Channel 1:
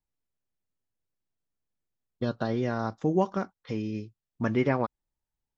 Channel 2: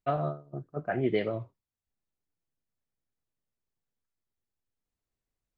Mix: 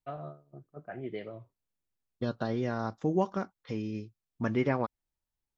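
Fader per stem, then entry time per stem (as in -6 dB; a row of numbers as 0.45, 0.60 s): -3.0, -11.0 dB; 0.00, 0.00 s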